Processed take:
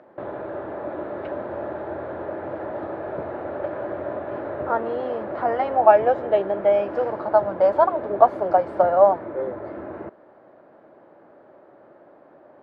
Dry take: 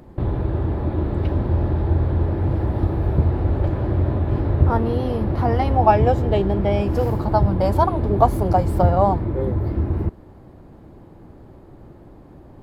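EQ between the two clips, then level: BPF 350–2800 Hz; bell 600 Hz +11 dB 0.48 oct; bell 1500 Hz +8.5 dB 0.85 oct; -5.0 dB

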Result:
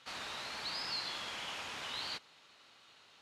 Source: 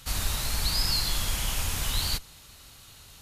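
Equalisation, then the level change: BPF 290–3400 Hz; low shelf 370 Hz -4.5 dB; -5.0 dB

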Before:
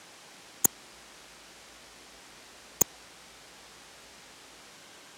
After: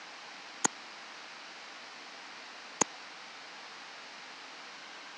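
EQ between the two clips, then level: speaker cabinet 310–5100 Hz, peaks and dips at 380 Hz -9 dB, 560 Hz -6 dB, 3400 Hz -5 dB; +7.0 dB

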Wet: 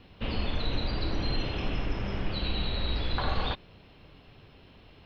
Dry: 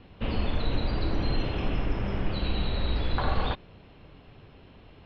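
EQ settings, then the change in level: high shelf 3300 Hz +10.5 dB; -3.0 dB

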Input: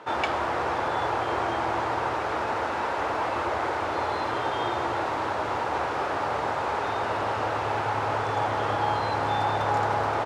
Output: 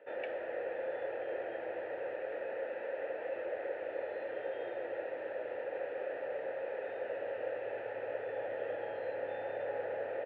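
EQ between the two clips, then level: vowel filter e; air absorption 380 m; +1.0 dB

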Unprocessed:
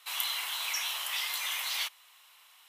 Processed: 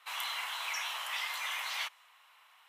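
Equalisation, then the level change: dynamic EQ 6700 Hz, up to +4 dB, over -52 dBFS, Q 1.1; three-band isolator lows -21 dB, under 440 Hz, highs -13 dB, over 2400 Hz; high shelf 12000 Hz -3.5 dB; +2.5 dB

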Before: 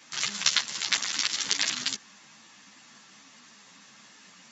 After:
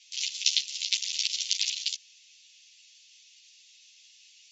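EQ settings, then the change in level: steep high-pass 2500 Hz 48 dB/oct; LPF 6800 Hz 24 dB/oct; 0.0 dB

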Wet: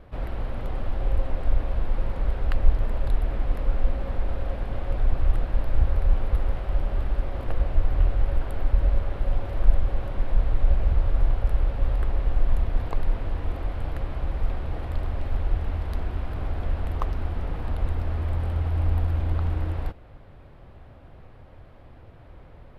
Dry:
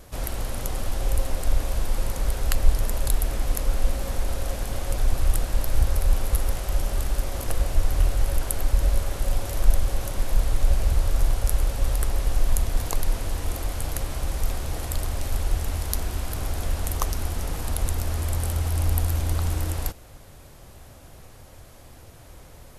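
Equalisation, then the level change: air absorption 450 m; 0.0 dB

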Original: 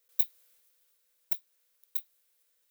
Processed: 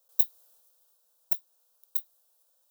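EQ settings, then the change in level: resonant high-pass 600 Hz, resonance Q 5; fixed phaser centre 870 Hz, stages 4; +3.5 dB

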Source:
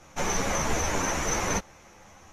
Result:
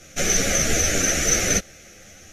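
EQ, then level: Butterworth band-stop 970 Hz, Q 1.4; high shelf 3200 Hz +8 dB; +5.0 dB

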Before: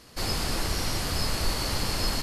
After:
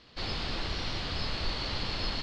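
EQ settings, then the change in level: ladder low-pass 4400 Hz, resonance 45%; +3.0 dB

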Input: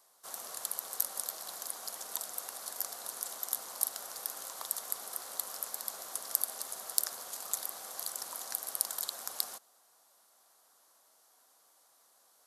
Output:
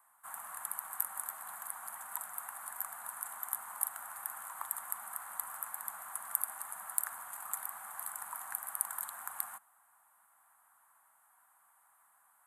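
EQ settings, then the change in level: EQ curve 210 Hz 0 dB, 360 Hz -29 dB, 880 Hz +9 dB, 1700 Hz +9 dB, 2400 Hz +1 dB, 5400 Hz -25 dB, 8200 Hz +2 dB; -4.5 dB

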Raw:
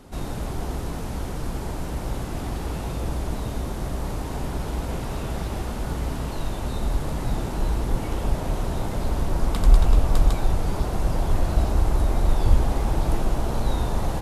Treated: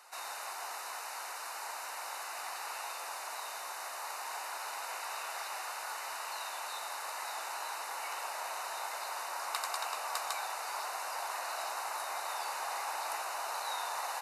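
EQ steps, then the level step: HPF 860 Hz 24 dB/oct; Butterworth band-stop 3300 Hz, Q 5.5; 0.0 dB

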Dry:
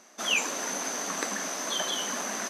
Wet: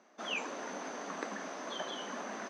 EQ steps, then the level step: BPF 180–4900 Hz; high shelf 2000 Hz -10.5 dB; -4.0 dB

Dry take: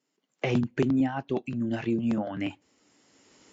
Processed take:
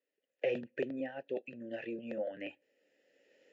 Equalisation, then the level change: vowel filter e; +4.0 dB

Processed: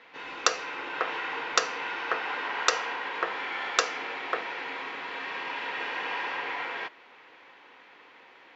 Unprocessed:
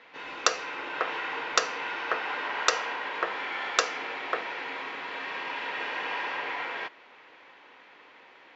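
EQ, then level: notch 610 Hz, Q 20; 0.0 dB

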